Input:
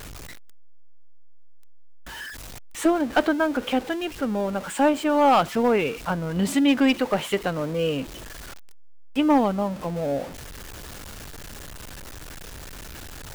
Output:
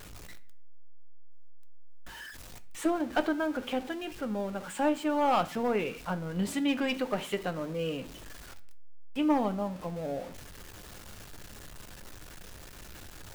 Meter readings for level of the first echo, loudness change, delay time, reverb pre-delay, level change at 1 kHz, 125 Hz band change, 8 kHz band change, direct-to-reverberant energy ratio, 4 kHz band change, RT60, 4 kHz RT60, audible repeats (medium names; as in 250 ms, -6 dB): no echo, -8.0 dB, no echo, 6 ms, -8.0 dB, -7.5 dB, -8.5 dB, 9.5 dB, -8.0 dB, 0.50 s, 0.45 s, no echo